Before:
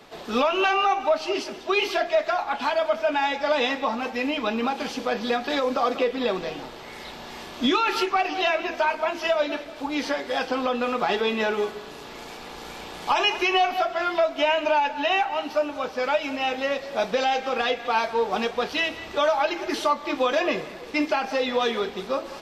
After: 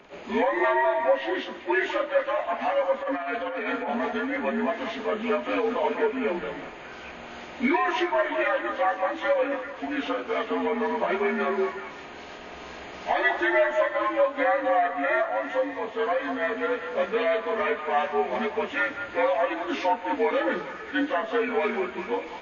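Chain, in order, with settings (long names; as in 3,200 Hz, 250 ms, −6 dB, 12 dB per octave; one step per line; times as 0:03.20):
partials spread apart or drawn together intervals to 84%
0:03.03–0:04.37: compressor whose output falls as the input rises −29 dBFS, ratio −1
echo through a band-pass that steps 195 ms, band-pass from 990 Hz, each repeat 0.7 octaves, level −6 dB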